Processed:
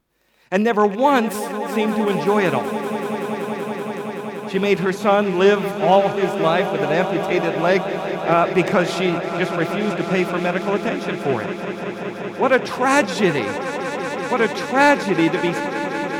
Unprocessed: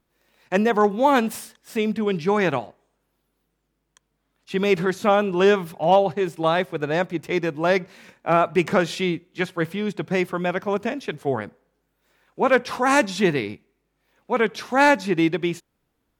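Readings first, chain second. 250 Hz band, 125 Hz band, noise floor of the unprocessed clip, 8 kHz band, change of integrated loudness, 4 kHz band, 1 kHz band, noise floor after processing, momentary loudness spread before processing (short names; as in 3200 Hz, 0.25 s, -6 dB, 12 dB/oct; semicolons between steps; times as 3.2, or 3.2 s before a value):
+3.5 dB, +3.5 dB, -74 dBFS, +3.5 dB, +2.5 dB, +3.5 dB, +3.5 dB, -31 dBFS, 10 LU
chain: rattling part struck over -31 dBFS, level -30 dBFS; swelling echo 0.19 s, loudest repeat 5, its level -14 dB; gain +2 dB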